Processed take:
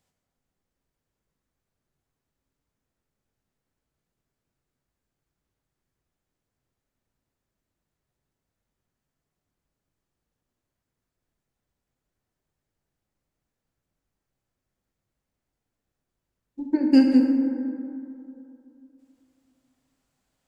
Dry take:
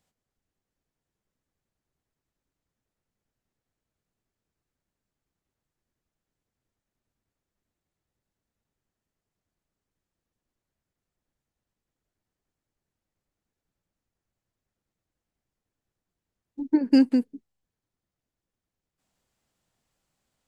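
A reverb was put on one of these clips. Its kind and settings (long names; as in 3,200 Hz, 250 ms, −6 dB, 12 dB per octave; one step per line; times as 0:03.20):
dense smooth reverb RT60 2.8 s, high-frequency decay 0.35×, DRR 1.5 dB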